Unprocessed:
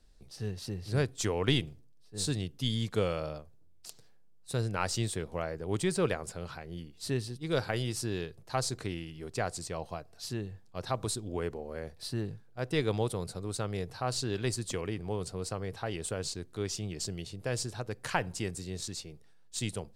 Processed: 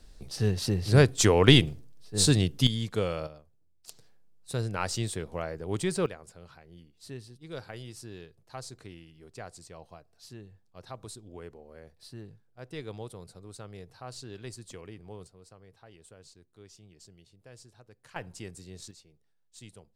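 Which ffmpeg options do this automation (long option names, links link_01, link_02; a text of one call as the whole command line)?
ffmpeg -i in.wav -af "asetnsamples=nb_out_samples=441:pad=0,asendcmd='2.67 volume volume 0.5dB;3.27 volume volume -8.5dB;3.88 volume volume 0.5dB;6.06 volume volume -10dB;15.27 volume volume -18dB;18.16 volume volume -7dB;18.91 volume volume -14.5dB',volume=10dB" out.wav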